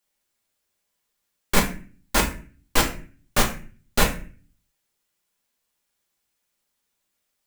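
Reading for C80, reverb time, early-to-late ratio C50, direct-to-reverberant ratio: 14.0 dB, 0.40 s, 9.0 dB, −1.0 dB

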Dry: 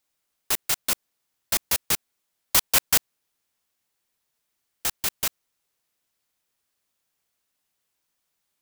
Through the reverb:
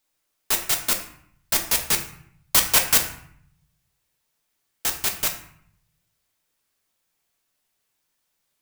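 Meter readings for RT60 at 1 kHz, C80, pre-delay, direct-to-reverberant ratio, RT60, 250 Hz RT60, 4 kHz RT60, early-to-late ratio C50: 0.65 s, 12.0 dB, 4 ms, 3.0 dB, 0.65 s, 0.90 s, 0.45 s, 9.0 dB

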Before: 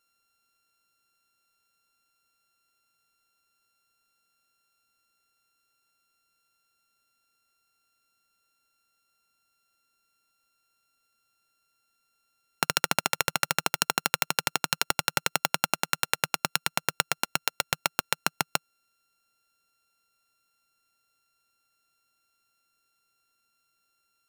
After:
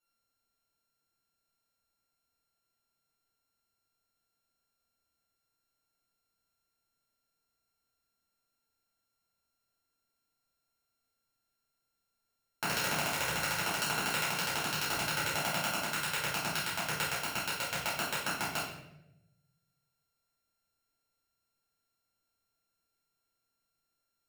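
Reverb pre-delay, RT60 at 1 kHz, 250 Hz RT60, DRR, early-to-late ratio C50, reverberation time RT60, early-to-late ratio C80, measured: 3 ms, 0.75 s, 1.2 s, −11.0 dB, 2.0 dB, 0.90 s, 5.5 dB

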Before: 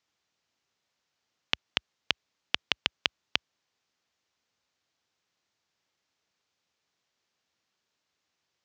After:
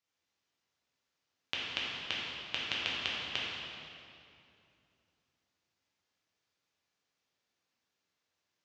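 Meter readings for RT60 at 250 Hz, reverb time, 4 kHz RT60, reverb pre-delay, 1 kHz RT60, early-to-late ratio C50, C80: 3.1 s, 2.6 s, 2.0 s, 5 ms, 2.5 s, −2.0 dB, −0.5 dB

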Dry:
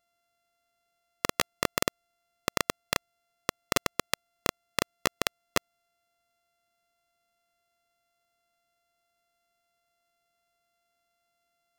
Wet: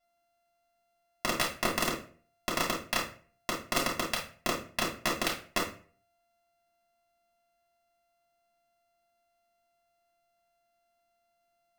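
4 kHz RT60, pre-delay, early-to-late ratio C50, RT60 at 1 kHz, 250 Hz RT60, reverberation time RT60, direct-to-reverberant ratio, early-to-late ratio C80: 0.30 s, 3 ms, 7.0 dB, 0.40 s, 0.50 s, 0.40 s, −4.5 dB, 13.0 dB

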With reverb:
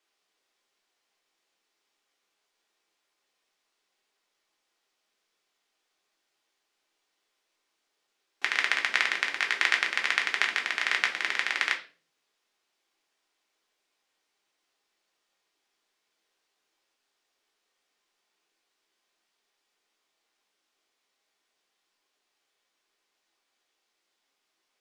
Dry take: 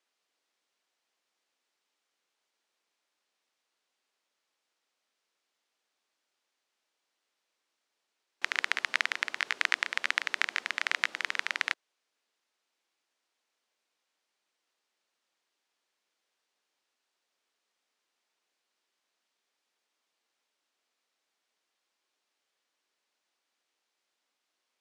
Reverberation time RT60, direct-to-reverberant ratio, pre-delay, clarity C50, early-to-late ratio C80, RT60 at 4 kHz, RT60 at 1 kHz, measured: 0.40 s, 1.0 dB, 3 ms, 12.0 dB, 17.0 dB, 0.35 s, 0.35 s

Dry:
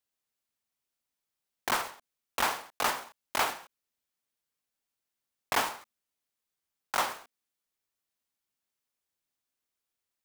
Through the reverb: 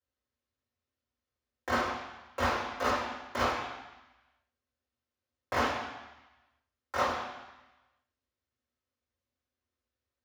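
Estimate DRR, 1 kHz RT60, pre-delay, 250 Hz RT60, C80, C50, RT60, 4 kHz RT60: −8.0 dB, 1.1 s, 3 ms, 1.0 s, 5.5 dB, 3.0 dB, 1.0 s, 1.2 s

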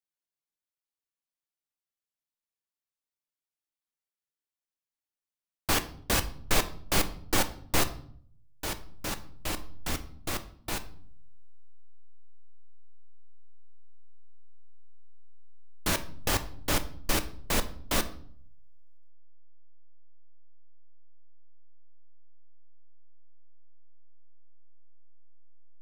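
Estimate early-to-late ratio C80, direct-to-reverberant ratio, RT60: 18.5 dB, 9.0 dB, 0.60 s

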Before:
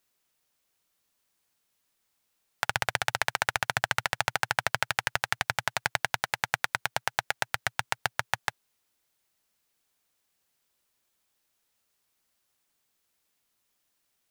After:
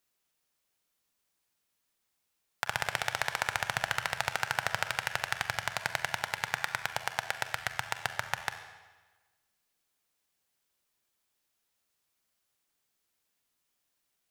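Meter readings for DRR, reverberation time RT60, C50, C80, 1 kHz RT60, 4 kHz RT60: 8.0 dB, 1.3 s, 9.5 dB, 10.5 dB, 1.3 s, 1.2 s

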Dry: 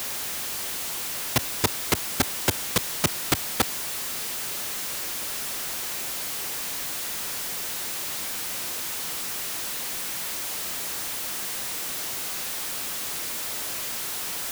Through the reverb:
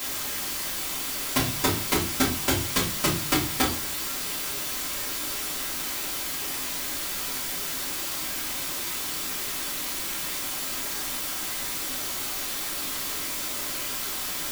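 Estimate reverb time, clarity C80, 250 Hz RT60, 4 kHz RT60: 0.40 s, 14.0 dB, 0.70 s, 0.35 s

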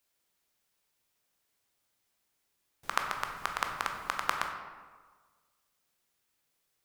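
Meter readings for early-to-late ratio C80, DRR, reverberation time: 7.0 dB, 3.0 dB, 1.5 s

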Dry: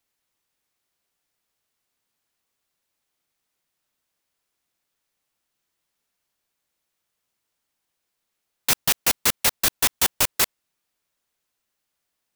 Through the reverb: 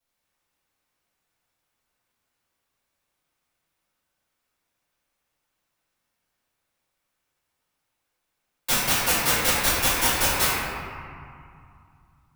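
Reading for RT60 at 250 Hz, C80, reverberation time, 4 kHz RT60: 2.9 s, −1.0 dB, 2.4 s, 1.4 s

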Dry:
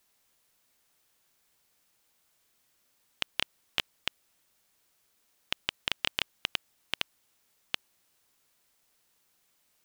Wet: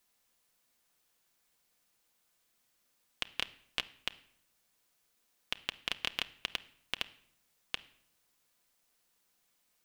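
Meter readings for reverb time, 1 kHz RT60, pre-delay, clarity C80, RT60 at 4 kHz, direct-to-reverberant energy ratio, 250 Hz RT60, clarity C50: 0.65 s, 0.60 s, 4 ms, 22.0 dB, 0.55 s, 9.5 dB, 0.80 s, 18.5 dB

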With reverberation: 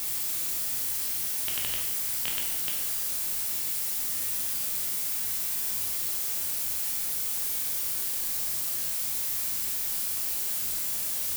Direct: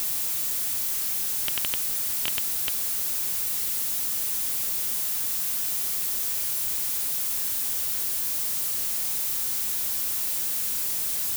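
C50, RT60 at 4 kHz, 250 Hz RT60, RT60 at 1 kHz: 3.5 dB, 0.90 s, 0.85 s, 0.90 s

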